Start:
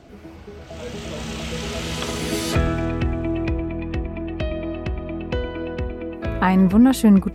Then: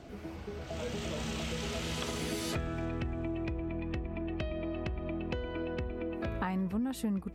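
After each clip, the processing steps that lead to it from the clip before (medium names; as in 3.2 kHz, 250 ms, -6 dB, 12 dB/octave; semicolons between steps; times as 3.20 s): compression 5:1, threshold -30 dBFS, peak gain reduction 18 dB; trim -3 dB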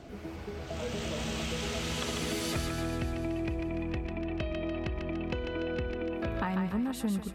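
thinning echo 146 ms, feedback 64%, high-pass 860 Hz, level -4 dB; trim +1.5 dB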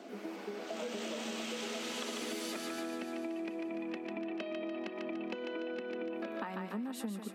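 elliptic high-pass 210 Hz, stop band 40 dB; compression, threshold -37 dBFS, peak gain reduction 9.5 dB; trim +1 dB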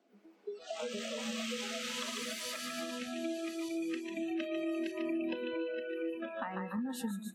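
backward echo that repeats 615 ms, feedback 68%, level -10 dB; spectral noise reduction 24 dB; trim +2 dB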